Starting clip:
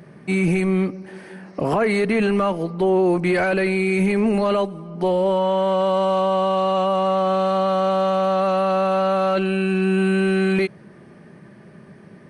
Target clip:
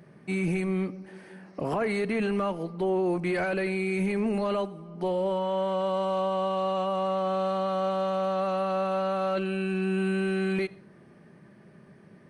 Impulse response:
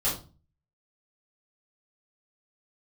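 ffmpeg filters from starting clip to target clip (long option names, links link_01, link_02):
-filter_complex "[0:a]asplit=2[link_01][link_02];[1:a]atrim=start_sample=2205,adelay=67[link_03];[link_02][link_03]afir=irnorm=-1:irlink=0,volume=-30dB[link_04];[link_01][link_04]amix=inputs=2:normalize=0,volume=-8.5dB"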